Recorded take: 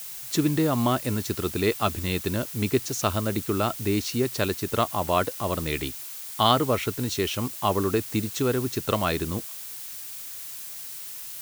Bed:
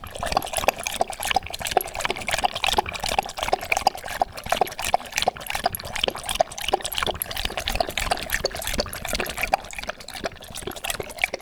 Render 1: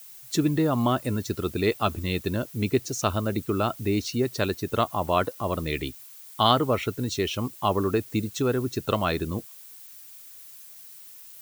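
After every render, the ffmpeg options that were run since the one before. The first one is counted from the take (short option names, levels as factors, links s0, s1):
-af "afftdn=nr=11:nf=-38"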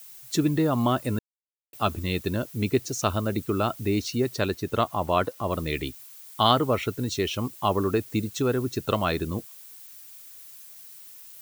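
-filter_complex "[0:a]asettb=1/sr,asplit=3[s0][s1][s2];[s0]atrim=end=4.364[s3];[s1]atrim=start=4.36:end=5.51,asetpts=PTS-STARTPTS,afade=t=in:d=0.004:c=qsin,afade=t=out:st=1.146:d=0.004:c=qsin,highshelf=f=6000:g=-4[s4];[s2]atrim=start=5.506[s5];[s3][s4]acrossfade=d=0.004:c1=hsin:c2=qsin[s6];[s6][s5]acrossfade=d=0.004:c1=qsin:c2=hsin,asplit=3[s7][s8][s9];[s7]atrim=end=1.19,asetpts=PTS-STARTPTS,afade=t=out:st=1.186:d=0.004:c=hsin[s10];[s8]atrim=start=1.19:end=1.73,asetpts=PTS-STARTPTS,volume=0[s11];[s9]atrim=start=1.73,asetpts=PTS-STARTPTS,afade=t=in:d=0.004:c=hsin[s12];[s10][s11][s12]concat=n=3:v=0:a=1"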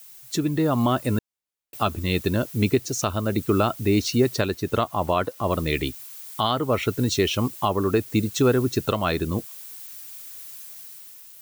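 -af "alimiter=limit=0.178:level=0:latency=1:release=482,dynaudnorm=f=160:g=9:m=2"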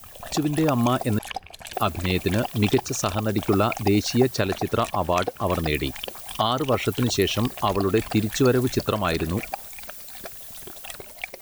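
-filter_complex "[1:a]volume=0.299[s0];[0:a][s0]amix=inputs=2:normalize=0"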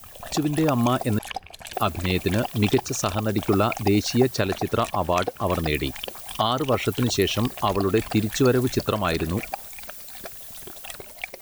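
-af anull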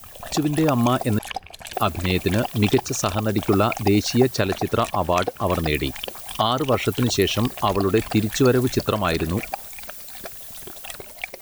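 -af "volume=1.26"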